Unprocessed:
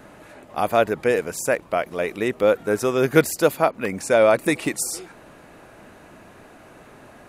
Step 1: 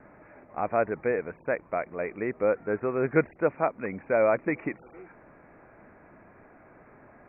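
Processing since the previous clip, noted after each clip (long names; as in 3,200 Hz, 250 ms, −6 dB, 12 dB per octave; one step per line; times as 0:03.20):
Butterworth low-pass 2,400 Hz 96 dB per octave
level −7 dB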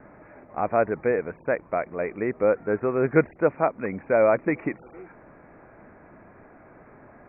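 high-frequency loss of the air 280 metres
level +4.5 dB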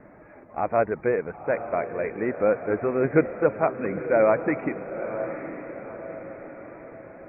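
spectral magnitudes quantised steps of 15 dB
feedback delay with all-pass diffusion 928 ms, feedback 50%, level −10 dB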